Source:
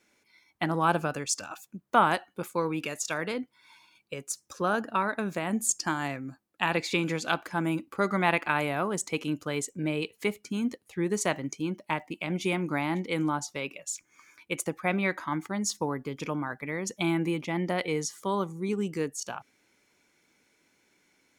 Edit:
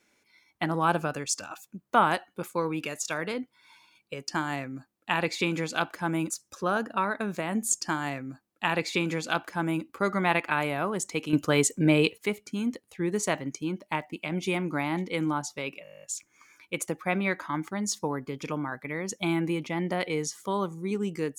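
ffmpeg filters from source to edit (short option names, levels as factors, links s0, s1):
-filter_complex "[0:a]asplit=15[s0][s1][s2][s3][s4][s5][s6][s7][s8][s9][s10][s11][s12][s13][s14];[s0]atrim=end=4.282[s15];[s1]atrim=start=5.798:end=7.822[s16];[s2]atrim=start=4.278:end=9.312[s17];[s3]atrim=start=9.308:end=10.162,asetpts=PTS-STARTPTS,volume=2.66[s18];[s4]atrim=start=10.158:end=13.832[s19];[s5]atrim=start=13.808:end=13.832[s20];[s6]atrim=start=13.808:end=13.832[s21];[s7]atrim=start=13.808:end=13.832[s22];[s8]atrim=start=13.808:end=13.832[s23];[s9]atrim=start=13.808:end=13.832[s24];[s10]atrim=start=13.808:end=13.832[s25];[s11]atrim=start=13.808:end=13.832[s26];[s12]atrim=start=13.808:end=13.832[s27];[s13]atrim=start=13.808:end=13.832[s28];[s14]atrim=start=13.808[s29];[s15][s16]acrossfade=d=0.004:c1=hsin:c2=hsin[s30];[s30][s17]acrossfade=d=0.004:c1=hsin:c2=hsin[s31];[s31][s18]acrossfade=d=0.004:c1=hsin:c2=hsin[s32];[s32][s19]acrossfade=d=0.004:c1=hsin:c2=hsin[s33];[s33][s20]acrossfade=d=0.004:c1=hsin:c2=hsin[s34];[s34][s21]acrossfade=d=0.004:c1=hsin:c2=hsin[s35];[s35][s22]acrossfade=d=0.004:c1=hsin:c2=hsin[s36];[s36][s23]acrossfade=d=0.004:c1=hsin:c2=hsin[s37];[s37][s24]acrossfade=d=0.004:c1=hsin:c2=hsin[s38];[s38][s25]acrossfade=d=0.004:c1=hsin:c2=hsin[s39];[s39][s26]acrossfade=d=0.004:c1=hsin:c2=hsin[s40];[s40][s27]acrossfade=d=0.004:c1=hsin:c2=hsin[s41];[s41][s28]acrossfade=d=0.004:c1=hsin:c2=hsin[s42];[s42][s29]acrossfade=d=0.004:c1=hsin:c2=hsin"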